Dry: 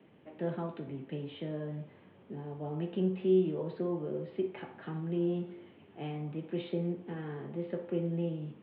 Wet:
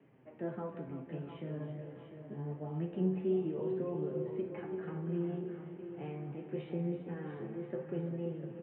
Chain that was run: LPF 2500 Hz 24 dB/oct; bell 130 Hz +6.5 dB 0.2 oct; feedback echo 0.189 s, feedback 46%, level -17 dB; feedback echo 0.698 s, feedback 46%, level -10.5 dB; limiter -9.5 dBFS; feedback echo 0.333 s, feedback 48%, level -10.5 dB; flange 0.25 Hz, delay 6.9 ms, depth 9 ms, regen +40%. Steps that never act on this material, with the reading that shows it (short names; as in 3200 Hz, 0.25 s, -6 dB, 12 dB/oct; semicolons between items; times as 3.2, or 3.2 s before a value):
limiter -9.5 dBFS: input peak -17.5 dBFS